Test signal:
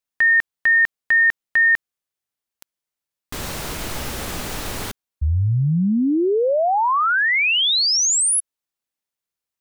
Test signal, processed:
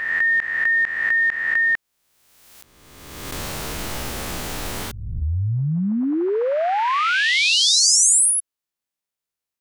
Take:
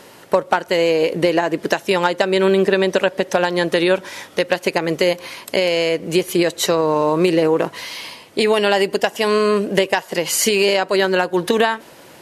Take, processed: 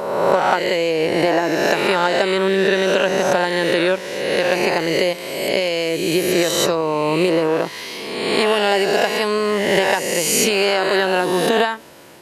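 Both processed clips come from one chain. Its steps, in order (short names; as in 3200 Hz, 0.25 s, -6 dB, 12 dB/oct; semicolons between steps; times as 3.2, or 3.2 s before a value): spectral swells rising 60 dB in 1.45 s; gain -3.5 dB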